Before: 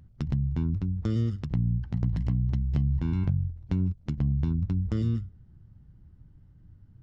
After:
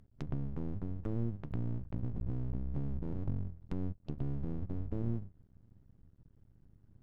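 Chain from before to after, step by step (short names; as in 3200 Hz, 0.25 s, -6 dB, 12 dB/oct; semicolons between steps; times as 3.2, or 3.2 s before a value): treble ducked by the level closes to 400 Hz, closed at -22.5 dBFS; spectral repair 4.07–5, 720–2600 Hz after; half-wave rectifier; gain -5 dB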